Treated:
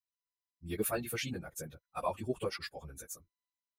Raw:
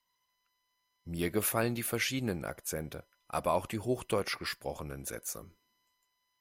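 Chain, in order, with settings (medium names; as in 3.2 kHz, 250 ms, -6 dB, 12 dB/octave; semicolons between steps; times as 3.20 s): expander on every frequency bin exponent 1.5; plain phase-vocoder stretch 0.59×; trim +2 dB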